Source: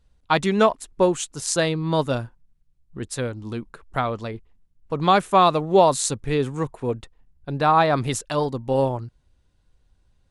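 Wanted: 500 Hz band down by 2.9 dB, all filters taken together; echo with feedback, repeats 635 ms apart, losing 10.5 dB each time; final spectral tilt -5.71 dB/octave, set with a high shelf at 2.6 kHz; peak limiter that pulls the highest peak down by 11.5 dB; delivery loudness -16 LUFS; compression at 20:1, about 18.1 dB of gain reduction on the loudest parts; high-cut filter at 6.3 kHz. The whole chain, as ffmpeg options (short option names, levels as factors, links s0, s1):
-af "lowpass=6300,equalizer=f=500:t=o:g=-3.5,highshelf=f=2600:g=-5.5,acompressor=threshold=0.0282:ratio=20,alimiter=level_in=1.58:limit=0.0631:level=0:latency=1,volume=0.631,aecho=1:1:635|1270|1905:0.299|0.0896|0.0269,volume=14.1"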